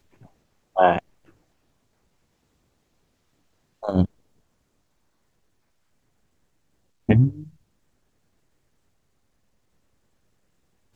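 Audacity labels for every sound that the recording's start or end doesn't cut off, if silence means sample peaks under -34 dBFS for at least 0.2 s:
0.760000	0.990000	sound
3.830000	4.060000	sound
7.090000	7.440000	sound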